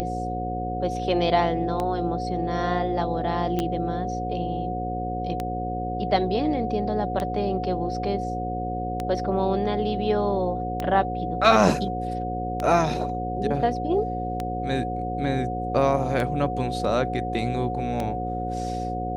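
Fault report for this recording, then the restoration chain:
mains buzz 60 Hz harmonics 9 −31 dBFS
scratch tick 33 1/3 rpm −14 dBFS
whistle 730 Hz −29 dBFS
0:03.59: click −13 dBFS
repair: click removal
hum removal 60 Hz, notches 9
notch filter 730 Hz, Q 30

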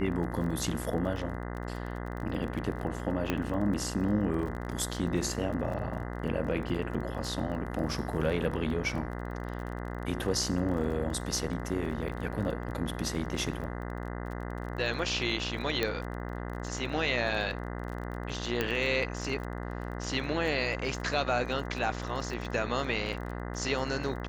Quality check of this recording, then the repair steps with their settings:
mains buzz 60 Hz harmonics 34 −37 dBFS
surface crackle 26 per second −37 dBFS
0:03.30: click −15 dBFS
0:15.83: click −14 dBFS
0:18.61: click −14 dBFS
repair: click removal
hum removal 60 Hz, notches 34

